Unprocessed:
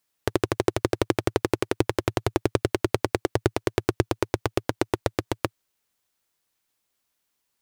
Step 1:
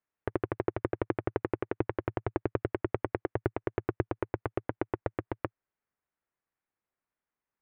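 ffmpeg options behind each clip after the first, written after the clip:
ffmpeg -i in.wav -af "lowpass=frequency=2100:width=0.5412,lowpass=frequency=2100:width=1.3066,volume=-7.5dB" out.wav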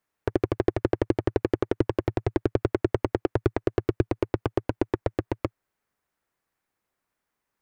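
ffmpeg -i in.wav -af "aeval=exprs='clip(val(0),-1,0.075)':channel_layout=same,volume=9dB" out.wav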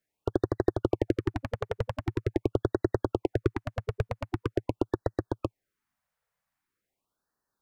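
ffmpeg -i in.wav -af "afftfilt=real='re*(1-between(b*sr/1024,290*pow(2800/290,0.5+0.5*sin(2*PI*0.44*pts/sr))/1.41,290*pow(2800/290,0.5+0.5*sin(2*PI*0.44*pts/sr))*1.41))':imag='im*(1-between(b*sr/1024,290*pow(2800/290,0.5+0.5*sin(2*PI*0.44*pts/sr))/1.41,290*pow(2800/290,0.5+0.5*sin(2*PI*0.44*pts/sr))*1.41))':win_size=1024:overlap=0.75,volume=-2.5dB" out.wav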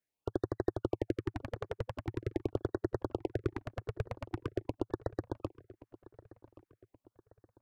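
ffmpeg -i in.wav -filter_complex "[0:a]asplit=2[link_01][link_02];[link_02]adelay=1126,lowpass=frequency=2600:poles=1,volume=-19dB,asplit=2[link_03][link_04];[link_04]adelay=1126,lowpass=frequency=2600:poles=1,volume=0.43,asplit=2[link_05][link_06];[link_06]adelay=1126,lowpass=frequency=2600:poles=1,volume=0.43[link_07];[link_01][link_03][link_05][link_07]amix=inputs=4:normalize=0,volume=-7dB" out.wav

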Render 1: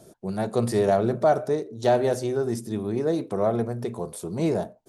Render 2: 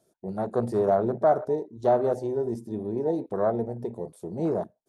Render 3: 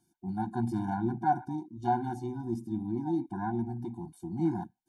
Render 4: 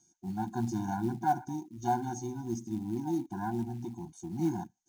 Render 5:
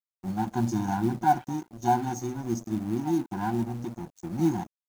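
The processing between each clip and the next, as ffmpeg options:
ffmpeg -i in.wav -af "afwtdn=0.0355,lowshelf=frequency=240:gain=-7" out.wav
ffmpeg -i in.wav -af "afftfilt=real='re*eq(mod(floor(b*sr/1024/350),2),0)':imag='im*eq(mod(floor(b*sr/1024/350),2),0)':win_size=1024:overlap=0.75" out.wav
ffmpeg -i in.wav -af "lowpass=frequency=6400:width_type=q:width=15,acrusher=bits=7:mode=log:mix=0:aa=0.000001,volume=-1.5dB" out.wav
ffmpeg -i in.wav -af "aeval=exprs='sgn(val(0))*max(abs(val(0))-0.00355,0)':channel_layout=same,volume=6.5dB" out.wav

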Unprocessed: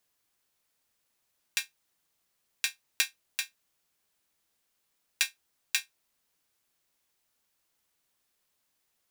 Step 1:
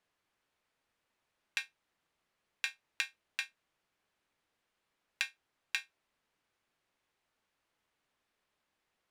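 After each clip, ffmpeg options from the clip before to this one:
ffmpeg -i in.wav -af "lowpass=11000,bass=frequency=250:gain=-2,treble=frequency=4000:gain=-14,acompressor=threshold=-32dB:ratio=6,volume=2dB" out.wav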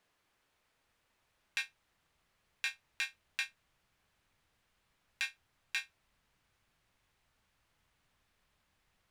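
ffmpeg -i in.wav -af "asubboost=boost=4.5:cutoff=150,alimiter=level_in=1dB:limit=-24dB:level=0:latency=1:release=30,volume=-1dB,volume=5.5dB" out.wav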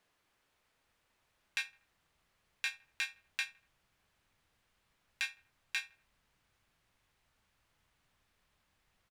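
ffmpeg -i in.wav -filter_complex "[0:a]asplit=2[link_01][link_02];[link_02]adelay=80,lowpass=frequency=2100:poles=1,volume=-20dB,asplit=2[link_03][link_04];[link_04]adelay=80,lowpass=frequency=2100:poles=1,volume=0.46,asplit=2[link_05][link_06];[link_06]adelay=80,lowpass=frequency=2100:poles=1,volume=0.46[link_07];[link_01][link_03][link_05][link_07]amix=inputs=4:normalize=0" out.wav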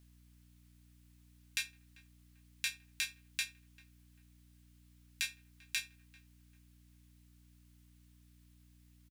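ffmpeg -i in.wav -filter_complex "[0:a]aderivative,aeval=exprs='val(0)+0.000355*(sin(2*PI*60*n/s)+sin(2*PI*2*60*n/s)/2+sin(2*PI*3*60*n/s)/3+sin(2*PI*4*60*n/s)/4+sin(2*PI*5*60*n/s)/5)':channel_layout=same,asplit=2[link_01][link_02];[link_02]adelay=393,lowpass=frequency=930:poles=1,volume=-16.5dB,asplit=2[link_03][link_04];[link_04]adelay=393,lowpass=frequency=930:poles=1,volume=0.52,asplit=2[link_05][link_06];[link_06]adelay=393,lowpass=frequency=930:poles=1,volume=0.52,asplit=2[link_07][link_08];[link_08]adelay=393,lowpass=frequency=930:poles=1,volume=0.52,asplit=2[link_09][link_10];[link_10]adelay=393,lowpass=frequency=930:poles=1,volume=0.52[link_11];[link_01][link_03][link_05][link_07][link_09][link_11]amix=inputs=6:normalize=0,volume=7.5dB" out.wav

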